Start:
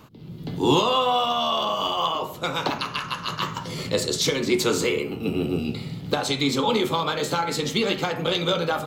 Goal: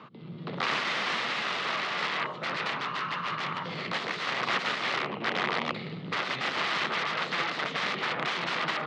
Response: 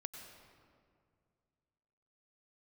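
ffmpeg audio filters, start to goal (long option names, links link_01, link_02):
-af "acontrast=74,aeval=exprs='0.668*(cos(1*acos(clip(val(0)/0.668,-1,1)))-cos(1*PI/2))+0.0188*(cos(3*acos(clip(val(0)/0.668,-1,1)))-cos(3*PI/2))+0.0211*(cos(4*acos(clip(val(0)/0.668,-1,1)))-cos(4*PI/2))+0.133*(cos(7*acos(clip(val(0)/0.668,-1,1)))-cos(7*PI/2))+0.0237*(cos(8*acos(clip(val(0)/0.668,-1,1)))-cos(8*PI/2))':channel_layout=same,aeval=exprs='(mod(8.41*val(0)+1,2)-1)/8.41':channel_layout=same,highpass=frequency=150:width=0.5412,highpass=frequency=150:width=1.3066,equalizer=frequency=290:width_type=q:width=4:gain=-5,equalizer=frequency=1200:width_type=q:width=4:gain=7,equalizer=frequency=2000:width_type=q:width=4:gain=5,lowpass=frequency=3900:width=0.5412,lowpass=frequency=3900:width=1.3066"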